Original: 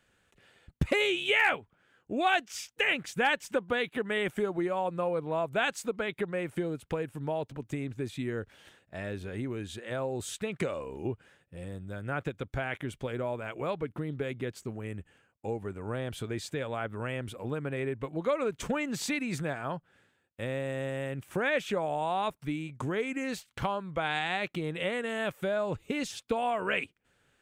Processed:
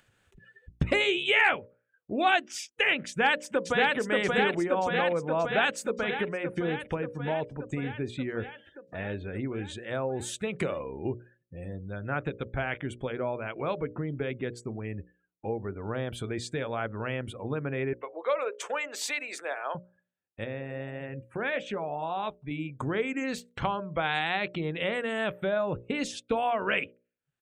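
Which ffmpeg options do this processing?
-filter_complex "[0:a]asplit=2[s0][s1];[s1]afade=t=in:st=3.07:d=0.01,afade=t=out:st=3.96:d=0.01,aecho=0:1:580|1160|1740|2320|2900|3480|4060|4640|5220|5800|6380|6960:0.841395|0.631046|0.473285|0.354964|0.266223|0.199667|0.14975|0.112313|0.0842345|0.0631759|0.0473819|0.0355364[s2];[s0][s2]amix=inputs=2:normalize=0,asettb=1/sr,asplit=3[s3][s4][s5];[s3]atrim=end=17.934[s6];[s4]atrim=start=17.93:end=19.75,asetpts=PTS-STARTPTS,afade=t=in:d=0.004:c=qsin,afade=t=out:st=1.816:d=0.004:c=qsin,highpass=f=460:w=0.5412,highpass=f=460:w=1.3066[s7];[s5]atrim=start=19.746[s8];[s6][s7]acrossfade=d=0.004:c1=hsin:c2=qsin[s9];[s9][s8]acrossfade=d=0.004:c1=qsin:c2=hsin,asettb=1/sr,asplit=3[s10][s11][s12];[s10]atrim=end=20.444[s13];[s11]atrim=start=20.44:end=22.51,asetpts=PTS-STARTPTS,afade=t=in:d=0.004:c=qsin,afade=t=out:st=2.066:d=0.004:c=qsin,flanger=delay=2.8:depth=6.7:regen=-78:speed=1.7:shape=triangular[s14];[s12]atrim=start=22.506[s15];[s13][s14]acrossfade=d=0.004:c1=hsin:c2=qsin[s16];[s16][s15]acrossfade=d=0.004:c1=qsin:c2=hsin,afftdn=nr=33:nf=-52,bandreject=f=60:t=h:w=6,bandreject=f=120:t=h:w=6,bandreject=f=180:t=h:w=6,bandreject=f=240:t=h:w=6,bandreject=f=300:t=h:w=6,bandreject=f=360:t=h:w=6,bandreject=f=420:t=h:w=6,bandreject=f=480:t=h:w=6,bandreject=f=540:t=h:w=6,bandreject=f=600:t=h:w=6,acompressor=mode=upward:threshold=0.00562:ratio=2.5,volume=1.33"

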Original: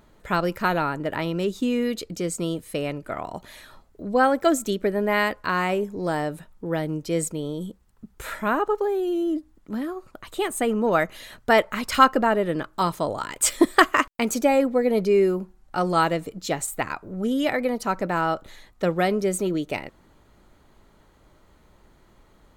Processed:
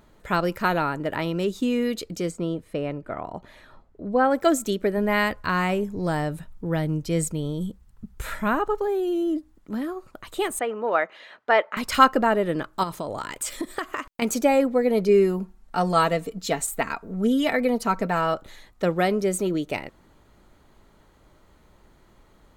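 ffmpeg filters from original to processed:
-filter_complex "[0:a]asplit=3[s0][s1][s2];[s0]afade=t=out:st=2.3:d=0.02[s3];[s1]lowpass=f=1400:p=1,afade=t=in:st=2.3:d=0.02,afade=t=out:st=4.3:d=0.02[s4];[s2]afade=t=in:st=4.3:d=0.02[s5];[s3][s4][s5]amix=inputs=3:normalize=0,asplit=3[s6][s7][s8];[s6]afade=t=out:st=4.96:d=0.02[s9];[s7]asubboost=boost=2.5:cutoff=200,afade=t=in:st=4.96:d=0.02,afade=t=out:st=8.87:d=0.02[s10];[s8]afade=t=in:st=8.87:d=0.02[s11];[s9][s10][s11]amix=inputs=3:normalize=0,asettb=1/sr,asplit=3[s12][s13][s14];[s12]atrim=end=10.594[s15];[s13]atrim=start=10.59:end=11.77,asetpts=PTS-STARTPTS,afade=t=in:d=0.004:c=qsin,afade=t=out:st=1.176:d=0.004:c=qsin,highpass=480,lowpass=2700[s16];[s14]atrim=start=11.766[s17];[s15][s16]acrossfade=d=0.004:c1=hsin:c2=qsin[s18];[s18][s17]acrossfade=d=0.004:c1=qsin:c2=hsin,asettb=1/sr,asplit=3[s19][s20][s21];[s19]atrim=end=12.834[s22];[s20]atrim=start=12.83:end=14.22,asetpts=PTS-STARTPTS,afade=t=in:d=0.004:c=qsin,afade=t=out:st=1.386:d=0.004:c=qsin,acompressor=threshold=0.0562:ratio=10:attack=3.2:release=140:knee=1:detection=peak[s23];[s21]atrim=start=14.216[s24];[s22][s23]acrossfade=d=0.004:c1=hsin:c2=qsin[s25];[s25][s24]acrossfade=d=0.004:c1=qsin:c2=hsin,asettb=1/sr,asplit=3[s26][s27][s28];[s26]atrim=end=15.084[s29];[s27]atrim=start=15.08:end=18.34,asetpts=PTS-STARTPTS,afade=t=in:d=0.004:c=qsin,afade=t=out:st=3.256:d=0.004:c=qsin,aecho=1:1:4.4:0.54,atrim=end_sample=143766[s30];[s28]atrim=start=18.336[s31];[s29][s30]acrossfade=d=0.004:c1=hsin:c2=qsin[s32];[s32][s31]acrossfade=d=0.004:c1=qsin:c2=hsin"

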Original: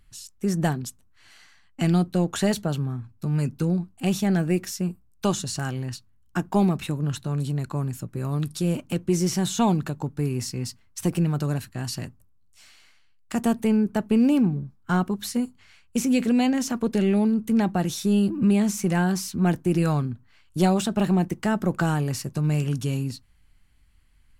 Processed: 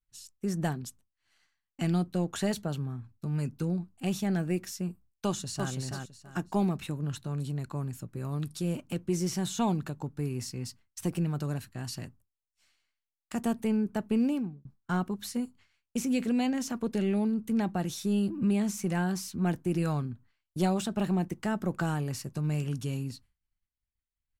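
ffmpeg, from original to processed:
-filter_complex "[0:a]asplit=2[s0][s1];[s1]afade=t=in:st=5.26:d=0.01,afade=t=out:st=5.72:d=0.01,aecho=0:1:330|660|990|1320:0.668344|0.167086|0.0417715|0.0104429[s2];[s0][s2]amix=inputs=2:normalize=0,asplit=2[s3][s4];[s3]atrim=end=14.65,asetpts=PTS-STARTPTS,afade=t=out:st=14.21:d=0.44[s5];[s4]atrim=start=14.65,asetpts=PTS-STARTPTS,afade=t=in:d=0.004:c=hsin[s6];[s5][s6]concat=n=2:v=0:a=1,agate=range=0.0224:threshold=0.00708:ratio=3:detection=peak,volume=0.447"

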